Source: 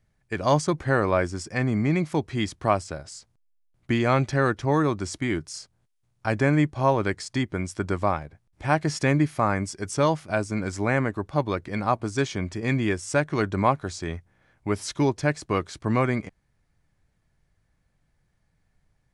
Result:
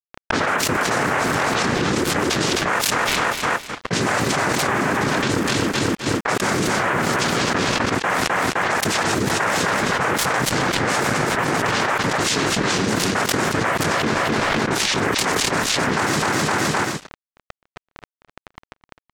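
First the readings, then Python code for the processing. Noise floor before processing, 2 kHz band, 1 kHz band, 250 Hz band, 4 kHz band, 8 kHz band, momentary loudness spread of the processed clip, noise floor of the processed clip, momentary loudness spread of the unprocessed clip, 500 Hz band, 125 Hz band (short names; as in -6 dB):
-70 dBFS, +11.0 dB, +7.5 dB, +3.0 dB, +16.0 dB, +14.5 dB, 2 LU, under -85 dBFS, 9 LU, +3.0 dB, -0.5 dB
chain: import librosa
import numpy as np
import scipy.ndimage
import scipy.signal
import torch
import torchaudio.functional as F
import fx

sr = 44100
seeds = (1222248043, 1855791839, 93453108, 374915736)

p1 = x + 0.5 * 10.0 ** (-25.0 / 20.0) * np.diff(np.sign(x), prepend=np.sign(x[:1]))
p2 = fx.chorus_voices(p1, sr, voices=6, hz=1.5, base_ms=28, depth_ms=3.0, mix_pct=35)
p3 = scipy.signal.sosfilt(scipy.signal.cheby1(4, 1.0, [330.0, 4600.0], 'bandpass', fs=sr, output='sos'), p2)
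p4 = fx.noise_vocoder(p3, sr, seeds[0], bands=3)
p5 = fx.level_steps(p4, sr, step_db=10)
p6 = p4 + (p5 * librosa.db_to_amplitude(1.5))
p7 = np.where(np.abs(p6) >= 10.0 ** (-36.0 / 20.0), p6, 0.0)
p8 = fx.env_lowpass(p7, sr, base_hz=1700.0, full_db=-21.0)
p9 = p8 + fx.echo_feedback(p8, sr, ms=258, feedback_pct=35, wet_db=-13.5, dry=0)
p10 = fx.env_flatten(p9, sr, amount_pct=100)
y = p10 * librosa.db_to_amplitude(-4.0)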